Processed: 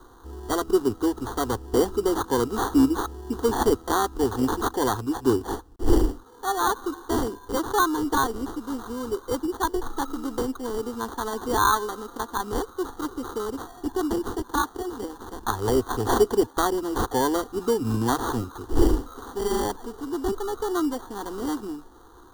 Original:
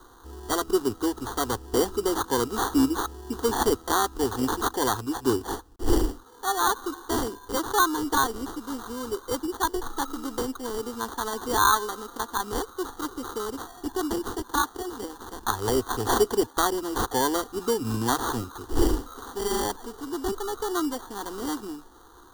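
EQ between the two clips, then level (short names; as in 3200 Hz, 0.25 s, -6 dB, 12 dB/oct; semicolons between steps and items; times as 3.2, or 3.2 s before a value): tilt shelf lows +3.5 dB, about 1100 Hz; 0.0 dB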